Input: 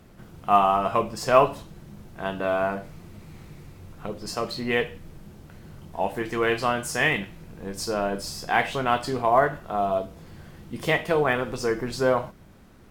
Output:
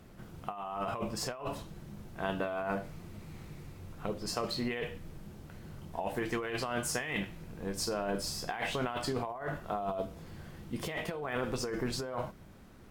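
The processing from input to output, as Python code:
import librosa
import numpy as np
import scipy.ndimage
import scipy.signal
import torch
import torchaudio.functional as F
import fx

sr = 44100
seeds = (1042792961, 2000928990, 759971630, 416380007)

y = fx.over_compress(x, sr, threshold_db=-28.0, ratio=-1.0)
y = F.gain(torch.from_numpy(y), -7.0).numpy()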